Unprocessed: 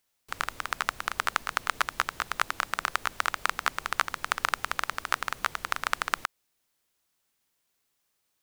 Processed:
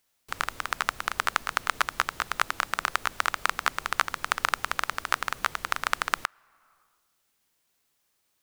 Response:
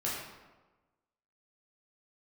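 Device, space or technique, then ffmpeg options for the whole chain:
ducked reverb: -filter_complex "[0:a]asplit=3[a][b][c];[1:a]atrim=start_sample=2205[d];[b][d]afir=irnorm=-1:irlink=0[e];[c]apad=whole_len=371661[f];[e][f]sidechaincompress=threshold=-45dB:ratio=6:attack=11:release=336,volume=-14dB[g];[a][g]amix=inputs=2:normalize=0,volume=1.5dB"

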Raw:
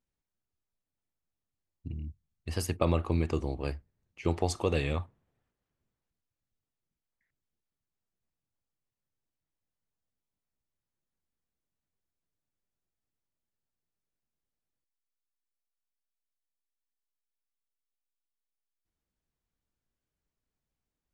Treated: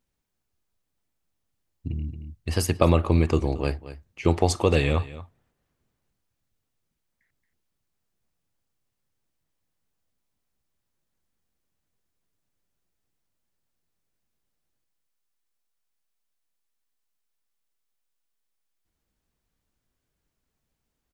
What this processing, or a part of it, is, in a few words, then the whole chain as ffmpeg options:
ducked delay: -filter_complex "[0:a]asplit=3[a][b][c];[b]adelay=226,volume=-8dB[d];[c]apad=whole_len=941985[e];[d][e]sidechaincompress=threshold=-34dB:ratio=10:attack=16:release=924[f];[a][f]amix=inputs=2:normalize=0,volume=8dB"

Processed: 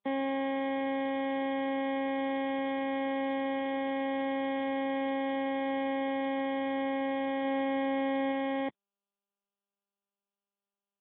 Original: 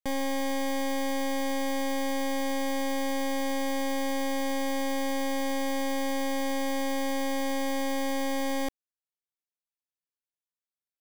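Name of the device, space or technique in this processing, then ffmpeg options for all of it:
mobile call with aggressive noise cancelling: -filter_complex "[0:a]asettb=1/sr,asplit=3[a][b][c];[a]atrim=end=7.444[d];[b]atrim=start=7.44:end=8.32,asetpts=PTS-STARTPTS,afade=t=in:d=0.004:c=qsin,afade=t=out:st=0.876:d=0.004:c=qsin,equalizer=f=330:w=0.33:g=2[e];[c]atrim=start=8.316[f];[d][e]acrossfade=d=0.004:c1=hsin:c2=qsin[g];[g][f]acrossfade=d=0.004:c1=qsin:c2=hsin,highpass=f=160:w=0.5412,highpass=f=160:w=1.3066,afftdn=nr=36:nf=-37" -ar 8000 -c:a libopencore_amrnb -b:a 10200

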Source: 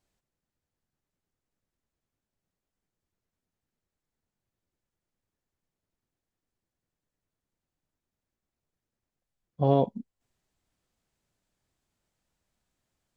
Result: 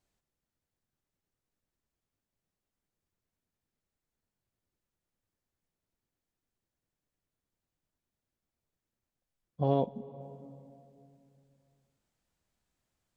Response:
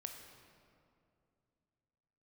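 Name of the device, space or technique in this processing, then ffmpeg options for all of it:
ducked reverb: -filter_complex "[0:a]asplit=3[a][b][c];[1:a]atrim=start_sample=2205[d];[b][d]afir=irnorm=-1:irlink=0[e];[c]apad=whole_len=580746[f];[e][f]sidechaincompress=threshold=-33dB:ratio=4:attack=34:release=403,volume=-0.5dB[g];[a][g]amix=inputs=2:normalize=0,volume=-6dB"

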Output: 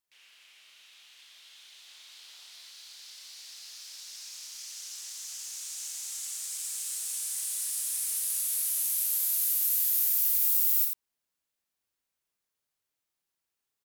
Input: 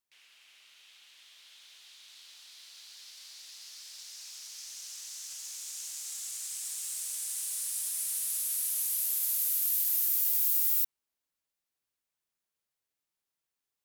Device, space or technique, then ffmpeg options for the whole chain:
slapback doubling: -filter_complex "[0:a]asplit=3[a][b][c];[b]adelay=33,volume=-5dB[d];[c]adelay=87,volume=-5dB[e];[a][d][e]amix=inputs=3:normalize=0,asettb=1/sr,asplit=3[f][g][h];[f]atrim=end=1.884[i];[g]atrim=start=1.88:end=2.7,asetpts=PTS-STARTPTS,afade=t=in:d=0.004:c=qsin,afade=t=out:st=0.816:d=0.004:c=qsin,equalizer=f=750:t=o:w=2.2:g=3.5[j];[h]atrim=start=2.696[k];[i][j]acrossfade=d=0.004:c1=hsin:c2=qsin[l];[l][k]acrossfade=d=0.004:c1=qsin:c2=hsin"

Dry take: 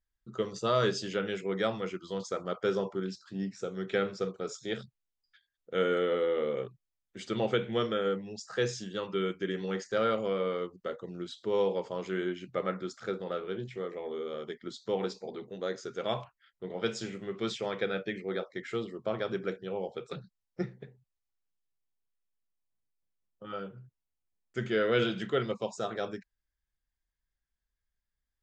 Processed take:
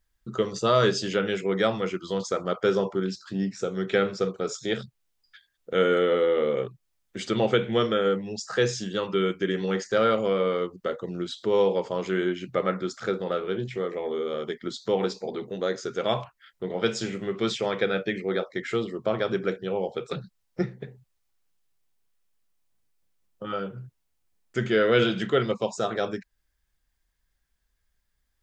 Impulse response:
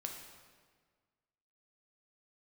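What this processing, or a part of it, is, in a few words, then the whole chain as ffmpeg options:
parallel compression: -filter_complex "[0:a]asplit=2[a][b];[b]acompressor=threshold=-46dB:ratio=6,volume=0dB[c];[a][c]amix=inputs=2:normalize=0,volume=5.5dB"

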